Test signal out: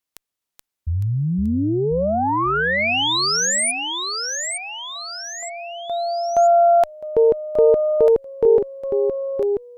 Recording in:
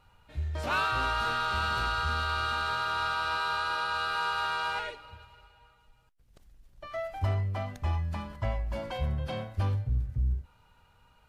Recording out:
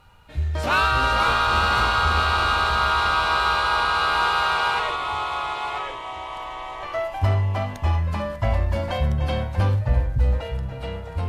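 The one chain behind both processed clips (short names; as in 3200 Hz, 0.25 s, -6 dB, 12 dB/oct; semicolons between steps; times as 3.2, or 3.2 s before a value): added harmonics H 2 -23 dB, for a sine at -16.5 dBFS; echoes that change speed 0.407 s, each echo -2 st, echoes 3, each echo -6 dB; gain +8.5 dB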